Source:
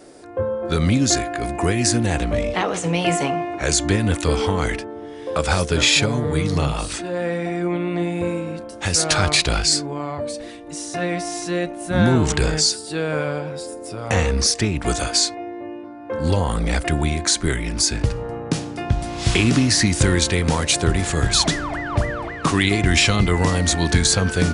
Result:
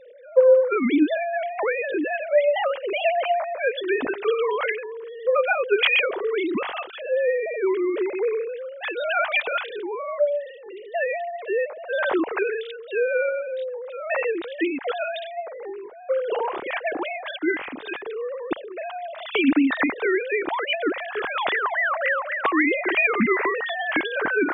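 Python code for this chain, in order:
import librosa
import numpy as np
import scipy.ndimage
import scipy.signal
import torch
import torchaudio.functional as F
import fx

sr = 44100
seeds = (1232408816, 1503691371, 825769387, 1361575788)

y = fx.sine_speech(x, sr)
y = y * librosa.db_to_amplitude(-3.5)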